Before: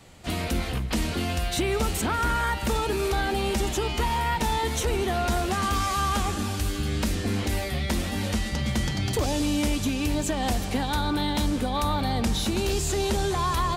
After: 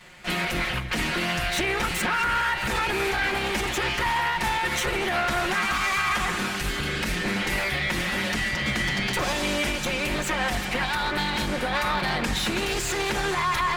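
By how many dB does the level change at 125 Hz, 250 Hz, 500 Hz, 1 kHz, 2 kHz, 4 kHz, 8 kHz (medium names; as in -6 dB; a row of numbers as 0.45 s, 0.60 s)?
-5.5 dB, -3.5 dB, -1.5 dB, +1.5 dB, +9.0 dB, +3.5 dB, -0.5 dB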